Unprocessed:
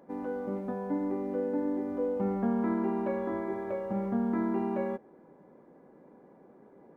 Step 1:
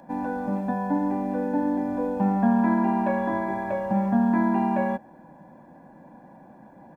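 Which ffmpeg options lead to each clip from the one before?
-filter_complex "[0:a]aecho=1:1:1.2:0.97,acrossover=split=140|1100[a][b][c];[a]acompressor=threshold=-53dB:ratio=6[d];[d][b][c]amix=inputs=3:normalize=0,volume=7dB"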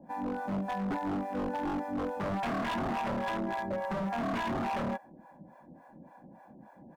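-filter_complex "[0:a]acrossover=split=570[a][b];[a]aeval=exprs='val(0)*(1-1/2+1/2*cos(2*PI*3.5*n/s))':c=same[c];[b]aeval=exprs='val(0)*(1-1/2-1/2*cos(2*PI*3.5*n/s))':c=same[d];[c][d]amix=inputs=2:normalize=0,aeval=exprs='0.0422*(abs(mod(val(0)/0.0422+3,4)-2)-1)':c=same"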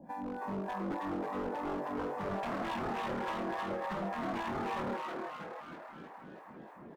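-filter_complex "[0:a]acompressor=threshold=-41dB:ratio=2,asplit=2[a][b];[b]asplit=8[c][d][e][f][g][h][i][j];[c]adelay=318,afreqshift=140,volume=-3dB[k];[d]adelay=636,afreqshift=280,volume=-8.2dB[l];[e]adelay=954,afreqshift=420,volume=-13.4dB[m];[f]adelay=1272,afreqshift=560,volume=-18.6dB[n];[g]adelay=1590,afreqshift=700,volume=-23.8dB[o];[h]adelay=1908,afreqshift=840,volume=-29dB[p];[i]adelay=2226,afreqshift=980,volume=-34.2dB[q];[j]adelay=2544,afreqshift=1120,volume=-39.3dB[r];[k][l][m][n][o][p][q][r]amix=inputs=8:normalize=0[s];[a][s]amix=inputs=2:normalize=0"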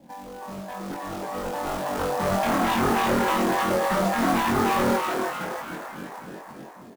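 -filter_complex "[0:a]dynaudnorm=f=680:g=5:m=12dB,acrusher=bits=3:mode=log:mix=0:aa=0.000001,asplit=2[a][b];[b]adelay=22,volume=-2.5dB[c];[a][c]amix=inputs=2:normalize=0"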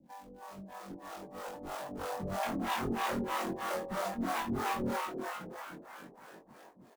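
-filter_complex "[0:a]acrossover=split=470[a][b];[a]aeval=exprs='val(0)*(1-1/2+1/2*cos(2*PI*3.1*n/s))':c=same[c];[b]aeval=exprs='val(0)*(1-1/2-1/2*cos(2*PI*3.1*n/s))':c=same[d];[c][d]amix=inputs=2:normalize=0,volume=-7.5dB"

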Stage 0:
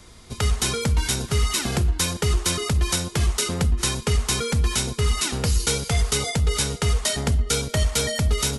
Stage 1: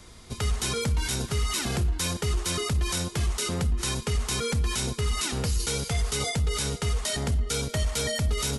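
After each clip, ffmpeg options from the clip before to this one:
-af "alimiter=limit=-17.5dB:level=0:latency=1:release=23,volume=-1.5dB"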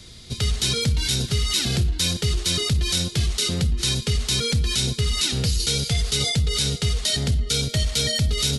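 -af "equalizer=f=125:t=o:w=1:g=6,equalizer=f=1k:t=o:w=1:g=-9,equalizer=f=4k:t=o:w=1:g=10,volume=2dB"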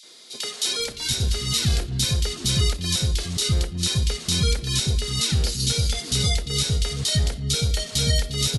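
-filter_complex "[0:a]acrossover=split=310|2500[a][b][c];[b]adelay=30[d];[a]adelay=790[e];[e][d][c]amix=inputs=3:normalize=0"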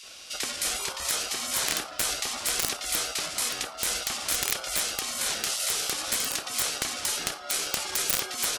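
-af "aeval=exprs='(mod(3.76*val(0)+1,2)-1)/3.76':c=same,afftfilt=real='re*lt(hypot(re,im),0.0891)':imag='im*lt(hypot(re,im),0.0891)':win_size=1024:overlap=0.75,aeval=exprs='val(0)*sin(2*PI*1000*n/s)':c=same,volume=5dB"

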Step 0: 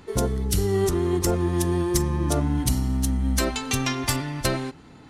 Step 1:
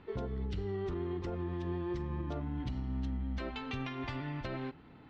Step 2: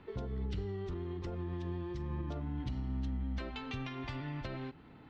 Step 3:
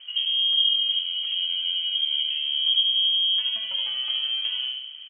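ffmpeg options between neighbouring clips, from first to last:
-af "lowpass=f=3.4k:w=0.5412,lowpass=f=3.4k:w=1.3066,alimiter=limit=-21dB:level=0:latency=1:release=172,volume=-8dB"
-filter_complex "[0:a]acrossover=split=180|3000[a][b][c];[b]acompressor=threshold=-41dB:ratio=6[d];[a][d][c]amix=inputs=3:normalize=0"
-filter_complex "[0:a]tiltshelf=f=670:g=9,asplit=2[a][b];[b]adelay=73,lowpass=f=2.1k:p=1,volume=-3dB,asplit=2[c][d];[d]adelay=73,lowpass=f=2.1k:p=1,volume=0.52,asplit=2[e][f];[f]adelay=73,lowpass=f=2.1k:p=1,volume=0.52,asplit=2[g][h];[h]adelay=73,lowpass=f=2.1k:p=1,volume=0.52,asplit=2[i][j];[j]adelay=73,lowpass=f=2.1k:p=1,volume=0.52,asplit=2[k][l];[l]adelay=73,lowpass=f=2.1k:p=1,volume=0.52,asplit=2[m][n];[n]adelay=73,lowpass=f=2.1k:p=1,volume=0.52[o];[a][c][e][g][i][k][m][o]amix=inputs=8:normalize=0,lowpass=f=2.8k:t=q:w=0.5098,lowpass=f=2.8k:t=q:w=0.6013,lowpass=f=2.8k:t=q:w=0.9,lowpass=f=2.8k:t=q:w=2.563,afreqshift=-3300,volume=5dB"

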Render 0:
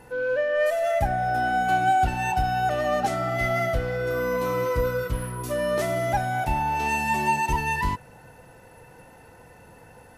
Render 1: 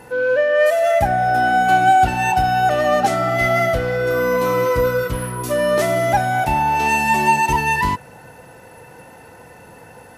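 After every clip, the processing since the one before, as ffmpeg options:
-af "highpass=f=120:p=1,volume=8dB"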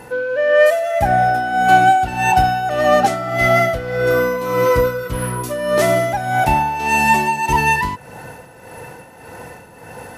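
-af "areverse,acompressor=mode=upward:threshold=-31dB:ratio=2.5,areverse,tremolo=f=1.7:d=0.65,volume=4dB"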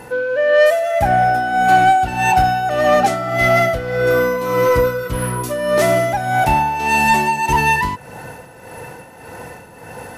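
-af "acontrast=37,volume=-4dB"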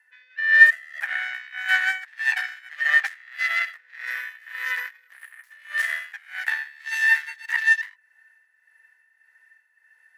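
-af "aeval=exprs='0.631*(cos(1*acos(clip(val(0)/0.631,-1,1)))-cos(1*PI/2))+0.141*(cos(2*acos(clip(val(0)/0.631,-1,1)))-cos(2*PI/2))+0.224*(cos(3*acos(clip(val(0)/0.631,-1,1)))-cos(3*PI/2))+0.0316*(cos(4*acos(clip(val(0)/0.631,-1,1)))-cos(4*PI/2))':c=same,highpass=f=1.8k:t=q:w=15,volume=-9dB"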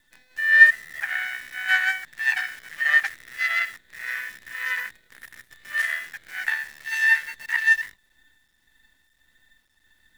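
-af "acrusher=bits=8:dc=4:mix=0:aa=0.000001"

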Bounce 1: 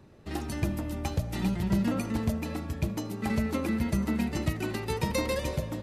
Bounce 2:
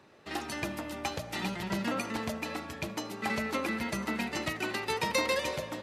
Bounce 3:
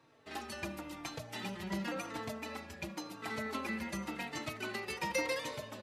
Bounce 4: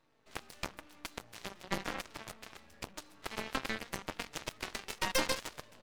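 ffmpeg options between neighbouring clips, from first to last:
-af "highpass=f=1.1k:p=1,highshelf=f=7.1k:g=-11.5,volume=7dB"
-filter_complex "[0:a]asplit=2[a][b];[b]adelay=3.9,afreqshift=-0.94[c];[a][c]amix=inputs=2:normalize=1,volume=-3.5dB"
-af "aeval=exprs='max(val(0),0)':c=same,aeval=exprs='0.0841*(cos(1*acos(clip(val(0)/0.0841,-1,1)))-cos(1*PI/2))+0.00841*(cos(4*acos(clip(val(0)/0.0841,-1,1)))-cos(4*PI/2))+0.00668*(cos(5*acos(clip(val(0)/0.0841,-1,1)))-cos(5*PI/2))+0.00841*(cos(6*acos(clip(val(0)/0.0841,-1,1)))-cos(6*PI/2))+0.0211*(cos(7*acos(clip(val(0)/0.0841,-1,1)))-cos(7*PI/2))':c=same,volume=6dB"

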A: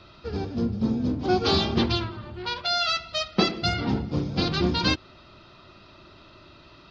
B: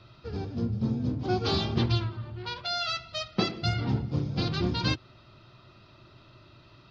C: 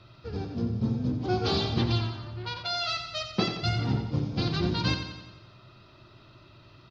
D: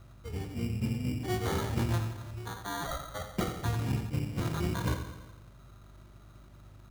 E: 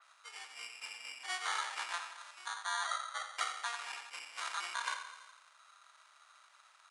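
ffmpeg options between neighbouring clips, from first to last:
-af "equalizer=f=120:t=o:w=0.42:g=13,volume=-6dB"
-af "aecho=1:1:89|178|267|356|445|534|623:0.376|0.21|0.118|0.066|0.037|0.0207|0.0116"
-af "aeval=exprs='val(0)+0.00316*(sin(2*PI*50*n/s)+sin(2*PI*2*50*n/s)/2+sin(2*PI*3*50*n/s)/3+sin(2*PI*4*50*n/s)/4+sin(2*PI*5*50*n/s)/5)':c=same,acrusher=samples=17:mix=1:aa=0.000001,equalizer=f=74:t=o:w=1.1:g=5.5,volume=-5.5dB"
-af "aresample=22050,aresample=44100,highpass=f=1k:w=0.5412,highpass=f=1k:w=1.3066,adynamicequalizer=threshold=0.00251:dfrequency=3800:dqfactor=0.7:tfrequency=3800:tqfactor=0.7:attack=5:release=100:ratio=0.375:range=2:mode=cutabove:tftype=highshelf,volume=3.5dB"

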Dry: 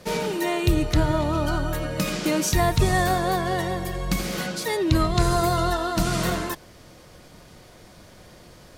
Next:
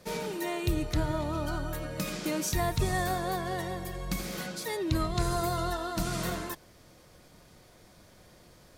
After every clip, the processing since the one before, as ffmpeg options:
-af "highshelf=f=10k:g=5,bandreject=f=2.9k:w=27,volume=-8.5dB"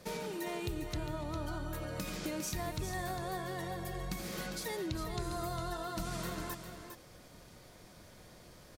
-filter_complex "[0:a]acompressor=threshold=-38dB:ratio=3,asplit=2[a][b];[b]aecho=0:1:404:0.376[c];[a][c]amix=inputs=2:normalize=0"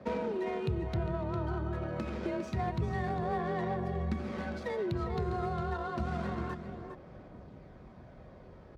-af "afreqshift=31,aphaser=in_gain=1:out_gain=1:delay=2.4:decay=0.23:speed=0.28:type=sinusoidal,adynamicsmooth=sensitivity=3:basefreq=1.4k,volume=5dB"

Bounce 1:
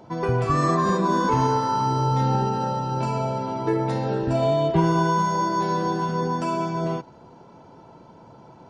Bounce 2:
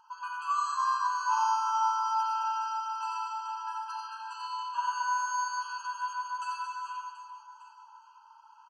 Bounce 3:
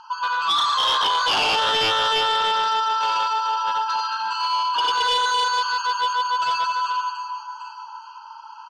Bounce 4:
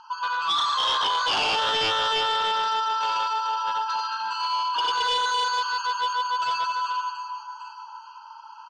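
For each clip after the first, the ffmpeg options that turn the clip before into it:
-filter_complex "[0:a]asplit=2[a][b];[b]aecho=0:1:90|225|427.5|731.2|1187:0.631|0.398|0.251|0.158|0.1[c];[a][c]amix=inputs=2:normalize=0,afftfilt=real='re*eq(mod(floor(b*sr/1024/820),2),1)':imag='im*eq(mod(floor(b*sr/1024/820),2),1)':win_size=1024:overlap=0.75,volume=-5dB"
-af "aeval=exprs='0.15*sin(PI/2*4.47*val(0)/0.15)':c=same,lowpass=f=4.4k:t=q:w=2,acontrast=79,volume=-8.5dB"
-af "lowpass=f=9.2k:w=0.5412,lowpass=f=9.2k:w=1.3066,volume=-3.5dB"

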